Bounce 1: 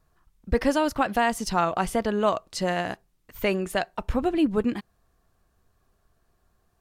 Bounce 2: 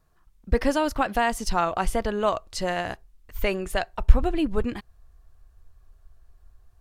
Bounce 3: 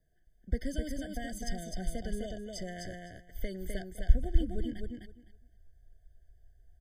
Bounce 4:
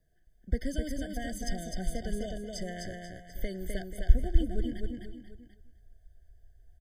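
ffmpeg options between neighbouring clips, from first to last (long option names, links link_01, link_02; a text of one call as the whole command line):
ffmpeg -i in.wav -af "asubboost=boost=10:cutoff=65" out.wav
ffmpeg -i in.wav -filter_complex "[0:a]acrossover=split=260|3000[link_01][link_02][link_03];[link_02]acompressor=threshold=-38dB:ratio=3[link_04];[link_01][link_04][link_03]amix=inputs=3:normalize=0,aecho=1:1:255|510|765:0.668|0.114|0.0193,afftfilt=real='re*eq(mod(floor(b*sr/1024/740),2),0)':imag='im*eq(mod(floor(b*sr/1024/740),2),0)':win_size=1024:overlap=0.75,volume=-7.5dB" out.wav
ffmpeg -i in.wav -af "aecho=1:1:486:0.211,volume=2dB" out.wav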